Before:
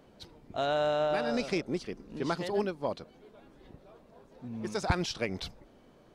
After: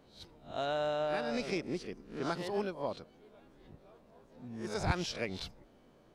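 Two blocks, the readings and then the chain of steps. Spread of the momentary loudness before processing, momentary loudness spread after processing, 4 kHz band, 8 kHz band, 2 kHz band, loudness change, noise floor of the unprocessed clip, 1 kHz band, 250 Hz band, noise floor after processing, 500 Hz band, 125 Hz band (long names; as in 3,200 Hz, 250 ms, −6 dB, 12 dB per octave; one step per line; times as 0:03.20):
15 LU, 15 LU, −3.5 dB, −3.0 dB, −3.5 dB, −4.0 dB, −59 dBFS, −4.0 dB, −4.0 dB, −63 dBFS, −4.5 dB, −3.0 dB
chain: peak hold with a rise ahead of every peak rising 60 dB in 0.34 s
level −5 dB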